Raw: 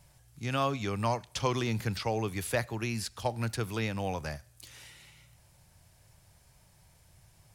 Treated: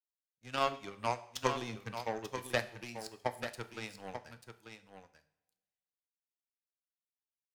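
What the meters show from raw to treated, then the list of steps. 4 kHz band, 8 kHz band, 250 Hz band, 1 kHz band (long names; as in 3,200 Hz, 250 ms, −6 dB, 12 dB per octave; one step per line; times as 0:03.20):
−4.5 dB, −7.5 dB, −10.5 dB, −3.0 dB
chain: spectral dynamics exaggerated over time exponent 1.5
high-pass filter 190 Hz 6 dB per octave
power curve on the samples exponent 2
on a send: single-tap delay 889 ms −8.5 dB
on the sum: coupled-rooms reverb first 0.54 s, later 1.5 s, from −17 dB, DRR 10 dB
level +6 dB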